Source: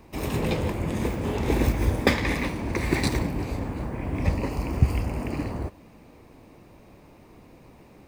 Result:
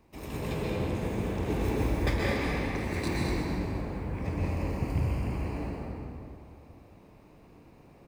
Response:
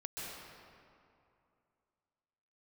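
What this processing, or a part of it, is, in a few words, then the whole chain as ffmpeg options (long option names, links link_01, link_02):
cave: -filter_complex "[0:a]aecho=1:1:214:0.355[link_01];[1:a]atrim=start_sample=2205[link_02];[link_01][link_02]afir=irnorm=-1:irlink=0,volume=-6dB"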